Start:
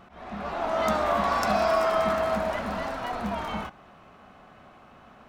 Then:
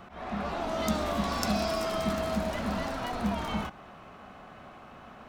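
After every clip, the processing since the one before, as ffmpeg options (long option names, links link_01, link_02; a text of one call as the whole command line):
ffmpeg -i in.wav -filter_complex "[0:a]acrossover=split=370|3000[link_01][link_02][link_03];[link_02]acompressor=threshold=-37dB:ratio=5[link_04];[link_01][link_04][link_03]amix=inputs=3:normalize=0,volume=3dB" out.wav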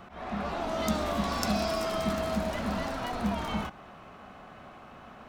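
ffmpeg -i in.wav -af anull out.wav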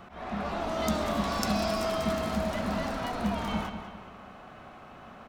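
ffmpeg -i in.wav -filter_complex "[0:a]asplit=2[link_01][link_02];[link_02]adelay=197,lowpass=frequency=4800:poles=1,volume=-9dB,asplit=2[link_03][link_04];[link_04]adelay=197,lowpass=frequency=4800:poles=1,volume=0.46,asplit=2[link_05][link_06];[link_06]adelay=197,lowpass=frequency=4800:poles=1,volume=0.46,asplit=2[link_07][link_08];[link_08]adelay=197,lowpass=frequency=4800:poles=1,volume=0.46,asplit=2[link_09][link_10];[link_10]adelay=197,lowpass=frequency=4800:poles=1,volume=0.46[link_11];[link_01][link_03][link_05][link_07][link_09][link_11]amix=inputs=6:normalize=0" out.wav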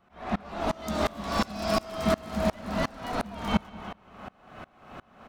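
ffmpeg -i in.wav -af "aeval=exprs='val(0)*pow(10,-27*if(lt(mod(-2.8*n/s,1),2*abs(-2.8)/1000),1-mod(-2.8*n/s,1)/(2*abs(-2.8)/1000),(mod(-2.8*n/s,1)-2*abs(-2.8)/1000)/(1-2*abs(-2.8)/1000))/20)':channel_layout=same,volume=8.5dB" out.wav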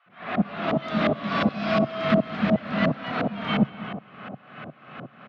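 ffmpeg -i in.wav -filter_complex "[0:a]asoftclip=type=hard:threshold=-20dB,highpass=frequency=120:width=0.5412,highpass=frequency=120:width=1.3066,equalizer=frequency=140:width_type=q:width=4:gain=6,equalizer=frequency=370:width_type=q:width=4:gain=-4,equalizer=frequency=910:width_type=q:width=4:gain=-8,lowpass=frequency=3300:width=0.5412,lowpass=frequency=3300:width=1.3066,acrossover=split=820[link_01][link_02];[link_01]adelay=60[link_03];[link_03][link_02]amix=inputs=2:normalize=0,volume=8dB" out.wav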